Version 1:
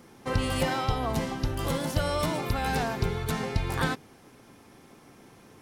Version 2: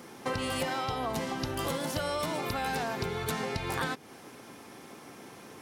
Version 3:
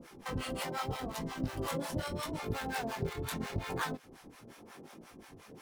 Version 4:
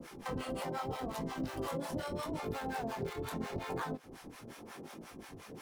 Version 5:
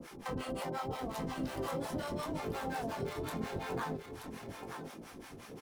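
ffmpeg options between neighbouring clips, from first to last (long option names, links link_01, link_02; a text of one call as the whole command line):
ffmpeg -i in.wav -af "highpass=frequency=250:poles=1,acompressor=threshold=-37dB:ratio=4,volume=6.5dB" out.wav
ffmpeg -i in.wav -filter_complex "[0:a]asplit=2[link_01][link_02];[link_02]acrusher=samples=35:mix=1:aa=0.000001:lfo=1:lforange=56:lforate=1,volume=-3dB[link_03];[link_01][link_03]amix=inputs=2:normalize=0,flanger=delay=18:depth=7.5:speed=0.79,acrossover=split=650[link_04][link_05];[link_04]aeval=exprs='val(0)*(1-1/2+1/2*cos(2*PI*5.6*n/s))':channel_layout=same[link_06];[link_05]aeval=exprs='val(0)*(1-1/2-1/2*cos(2*PI*5.6*n/s))':channel_layout=same[link_07];[link_06][link_07]amix=inputs=2:normalize=0" out.wav
ffmpeg -i in.wav -filter_complex "[0:a]acrossover=split=210|1100[link_01][link_02][link_03];[link_01]acompressor=threshold=-48dB:ratio=4[link_04];[link_02]acompressor=threshold=-40dB:ratio=4[link_05];[link_03]acompressor=threshold=-51dB:ratio=4[link_06];[link_04][link_05][link_06]amix=inputs=3:normalize=0,volume=3.5dB" out.wav
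ffmpeg -i in.wav -af "aecho=1:1:929:0.398" out.wav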